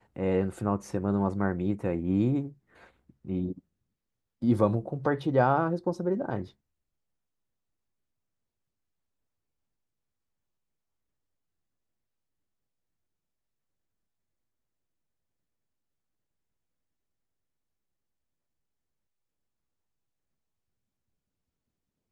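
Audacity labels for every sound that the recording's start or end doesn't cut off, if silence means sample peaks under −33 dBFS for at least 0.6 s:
3.270000	3.520000	sound
4.420000	6.440000	sound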